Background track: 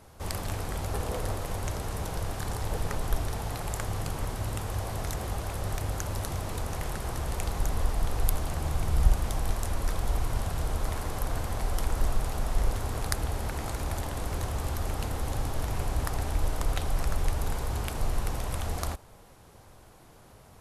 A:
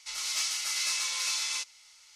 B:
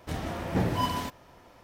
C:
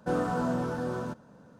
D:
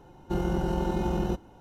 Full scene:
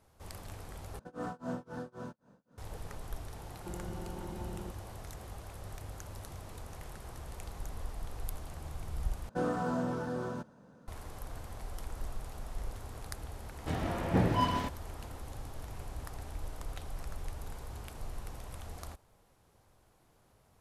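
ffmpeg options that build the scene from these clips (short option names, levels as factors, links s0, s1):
-filter_complex "[3:a]asplit=2[s0][s1];[0:a]volume=0.224[s2];[s0]tremolo=f=3.8:d=0.98[s3];[4:a]acompressor=threshold=0.0158:ratio=6:attack=3.2:release=140:knee=1:detection=peak[s4];[2:a]aemphasis=mode=reproduction:type=50kf[s5];[s2]asplit=3[s6][s7][s8];[s6]atrim=end=0.994[s9];[s3]atrim=end=1.59,asetpts=PTS-STARTPTS,volume=0.473[s10];[s7]atrim=start=2.576:end=9.294[s11];[s1]atrim=end=1.59,asetpts=PTS-STARTPTS,volume=0.631[s12];[s8]atrim=start=10.876[s13];[s4]atrim=end=1.6,asetpts=PTS-STARTPTS,volume=0.668,afade=t=in:d=0.004:c=hsin,afade=t=out:st=1.596:d=0.004:c=hsin,adelay=3360[s14];[s5]atrim=end=1.63,asetpts=PTS-STARTPTS,volume=0.944,afade=t=in:d=0.004:c=hsin,afade=t=out:st=1.626:d=0.004:c=hsin,adelay=13590[s15];[s9][s10]acrossfade=d=0.004:c1=hsin:c2=hsin[s16];[s16][s11]acrossfade=d=0.004:c1=hsin:c2=hsin[s17];[s17][s12]acrossfade=d=0.004:c1=hsin:c2=hsin[s18];[s18][s13]acrossfade=d=0.004:c1=hsin:c2=hsin[s19];[s19][s14][s15]amix=inputs=3:normalize=0"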